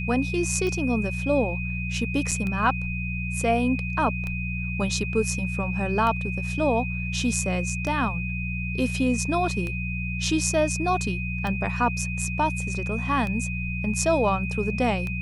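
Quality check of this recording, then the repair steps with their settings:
mains hum 60 Hz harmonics 3 −30 dBFS
scratch tick 33 1/3 rpm −18 dBFS
whistle 2,500 Hz −32 dBFS
0:02.31–0:02.32: drop-out 6.4 ms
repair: click removal
notch filter 2,500 Hz, Q 30
hum removal 60 Hz, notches 3
repair the gap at 0:02.31, 6.4 ms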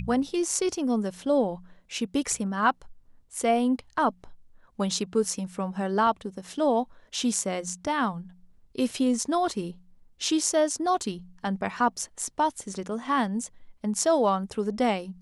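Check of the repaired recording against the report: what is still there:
none of them is left

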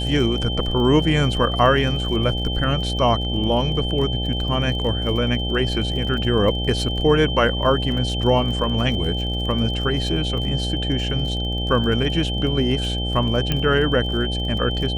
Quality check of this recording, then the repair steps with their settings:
mains buzz 60 Hz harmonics 14 −25 dBFS
surface crackle 39 per second −30 dBFS
whistle 3,100 Hz −27 dBFS
0:13.52: click −8 dBFS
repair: click removal
notch filter 3,100 Hz, Q 30
hum removal 60 Hz, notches 14

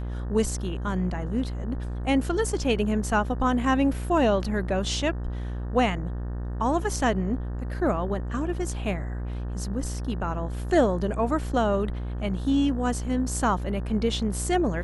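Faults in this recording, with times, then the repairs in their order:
mains buzz 60 Hz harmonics 31 −31 dBFS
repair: hum removal 60 Hz, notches 31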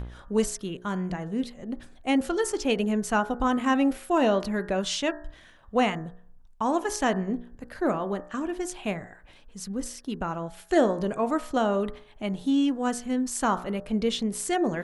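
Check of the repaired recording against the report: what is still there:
none of them is left

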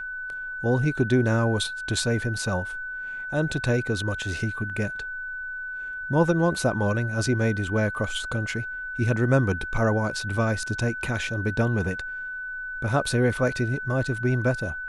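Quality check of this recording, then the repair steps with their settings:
whistle 1,500 Hz −31 dBFS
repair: notch filter 1,500 Hz, Q 30

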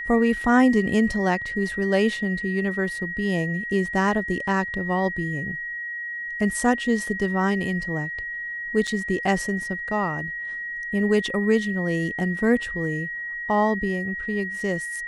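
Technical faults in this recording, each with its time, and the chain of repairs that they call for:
whistle 1,900 Hz −29 dBFS
0:08.87–0:08.88: drop-out 5.7 ms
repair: notch filter 1,900 Hz, Q 30
repair the gap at 0:08.87, 5.7 ms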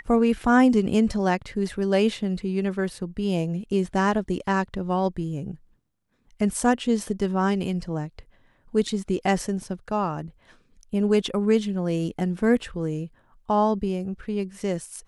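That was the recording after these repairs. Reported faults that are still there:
none of them is left

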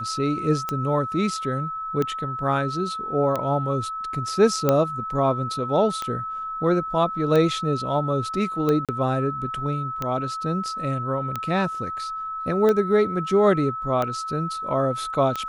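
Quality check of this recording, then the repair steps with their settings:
scratch tick 45 rpm −12 dBFS
whistle 1,300 Hz −28 dBFS
0:04.69: click
0:08.85–0:08.89: drop-out 37 ms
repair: click removal
notch filter 1,300 Hz, Q 30
repair the gap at 0:08.85, 37 ms

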